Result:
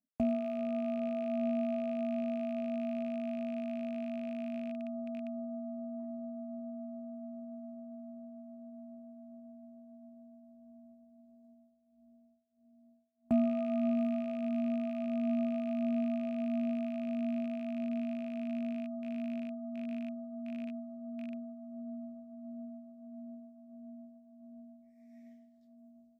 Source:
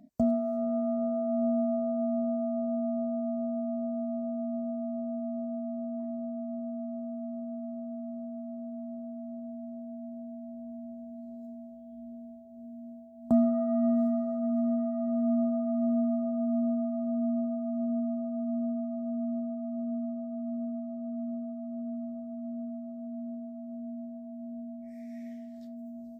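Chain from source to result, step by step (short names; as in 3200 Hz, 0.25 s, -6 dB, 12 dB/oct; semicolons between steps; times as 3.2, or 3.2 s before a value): rattling part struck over -37 dBFS, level -36 dBFS; expander -34 dBFS; gain -5 dB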